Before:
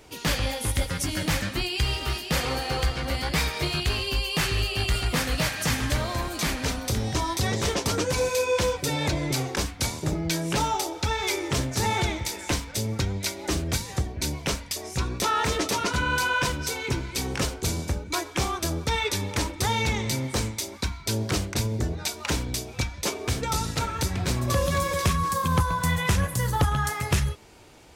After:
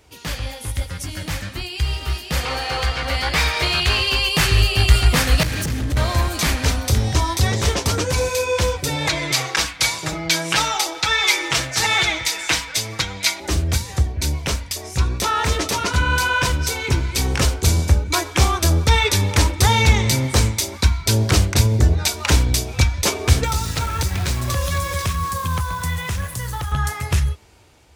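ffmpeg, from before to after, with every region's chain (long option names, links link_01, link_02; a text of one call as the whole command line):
ffmpeg -i in.wav -filter_complex "[0:a]asettb=1/sr,asplit=3[link_01][link_02][link_03];[link_01]atrim=end=2.454[link_04];[link_02]atrim=start=2.45:end=4.29,asetpts=PTS-STARTPTS,afade=type=in:duration=0.004:curve=qsin,afade=type=out:start_time=1.836:duration=0.004:curve=qsin,asplit=2[link_05][link_06];[link_06]highpass=frequency=720:poles=1,volume=11dB,asoftclip=type=tanh:threshold=-14.5dB[link_07];[link_05][link_07]amix=inputs=2:normalize=0,lowpass=frequency=4000:poles=1,volume=-6dB,bandreject=frequency=50:width_type=h:width=6,bandreject=frequency=100:width_type=h:width=6,bandreject=frequency=150:width_type=h:width=6,bandreject=frequency=200:width_type=h:width=6,bandreject=frequency=250:width_type=h:width=6,bandreject=frequency=300:width_type=h:width=6,bandreject=frequency=350:width_type=h:width=6,bandreject=frequency=400:width_type=h:width=6[link_08];[link_03]atrim=start=4.286[link_09];[link_04][link_08]acrossfade=duration=0.004:curve1=hsin:curve2=qsin[link_10];[link_10][link_09]acrossfade=duration=0.004:curve1=qsin:curve2=hsin,asettb=1/sr,asplit=3[link_11][link_12][link_13];[link_11]atrim=end=5.434[link_14];[link_12]atrim=start=5.43:end=5.97,asetpts=PTS-STARTPTS,afade=type=in:duration=0.004:curve=qsin,afade=type=out:start_time=0.536:duration=0.004:curve=qsin,lowshelf=frequency=510:width_type=q:width=1.5:gain=9.5,acompressor=threshold=-25dB:ratio=12:attack=3.2:release=140:knee=1:detection=peak,asoftclip=type=hard:threshold=-28.5dB[link_15];[link_13]atrim=start=5.966[link_16];[link_14][link_15]acrossfade=duration=0.004:curve1=hsin:curve2=qsin[link_17];[link_17][link_16]acrossfade=duration=0.004:curve1=qsin:curve2=hsin,asettb=1/sr,asplit=3[link_18][link_19][link_20];[link_18]atrim=end=9.074[link_21];[link_19]atrim=start=9.07:end=13.4,asetpts=PTS-STARTPTS,afade=type=in:duration=0.004:curve=qsin,afade=type=out:start_time=4.326:duration=0.004:curve=qsin,lowpass=frequency=3200:poles=1,tiltshelf=frequency=650:gain=-10,aecho=1:1:6.2:0.72,atrim=end_sample=190953[link_22];[link_20]atrim=start=13.396[link_23];[link_21][link_22]acrossfade=duration=0.004:curve1=hsin:curve2=qsin[link_24];[link_24][link_23]acrossfade=duration=0.004:curve1=qsin:curve2=hsin,asettb=1/sr,asplit=3[link_25][link_26][link_27];[link_25]atrim=end=23.444[link_28];[link_26]atrim=start=23.44:end=26.72,asetpts=PTS-STARTPTS,afade=type=in:duration=0.004:curve=qsin,afade=type=out:start_time=3.276:duration=0.004:curve=qsin,acrossover=split=140|1000[link_29][link_30][link_31];[link_29]acompressor=threshold=-36dB:ratio=4[link_32];[link_30]acompressor=threshold=-38dB:ratio=4[link_33];[link_31]acompressor=threshold=-34dB:ratio=4[link_34];[link_32][link_33][link_34]amix=inputs=3:normalize=0,acrusher=bits=8:dc=4:mix=0:aa=0.000001[link_35];[link_27]atrim=start=26.716[link_36];[link_28][link_35]acrossfade=duration=0.004:curve1=hsin:curve2=qsin[link_37];[link_37][link_36]acrossfade=duration=0.004:curve1=qsin:curve2=hsin,lowshelf=frequency=390:gain=-7,dynaudnorm=framelen=920:gausssize=7:maxgain=13dB,equalizer=frequency=72:width_type=o:width=1.6:gain=14,volume=-2.5dB" out.wav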